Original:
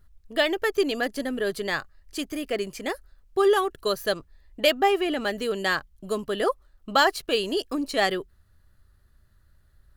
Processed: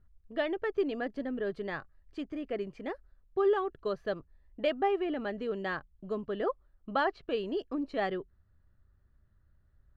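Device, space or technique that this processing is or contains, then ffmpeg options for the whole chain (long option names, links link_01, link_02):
phone in a pocket: -filter_complex "[0:a]asettb=1/sr,asplit=3[link_01][link_02][link_03];[link_01]atrim=end=6.454[link_04];[link_02]atrim=start=6.45:end=7.29,asetpts=PTS-STARTPTS,afade=type=in:duration=0.004:curve=qsin,afade=type=out:start_time=0.836:duration=0.004:curve=qsin,lowpass=5800[link_05];[link_03]atrim=start=7.286[link_06];[link_04][link_05]acrossfade=duration=0.004:curve1=hsin:curve2=qsin[link_07];[link_07][link_06]acrossfade=duration=0.004:curve1=qsin:curve2=hsin,lowpass=3400,equalizer=frequency=150:width_type=o:width=2.6:gain=3,highshelf=frequency=2500:gain=-11,volume=-7.5dB"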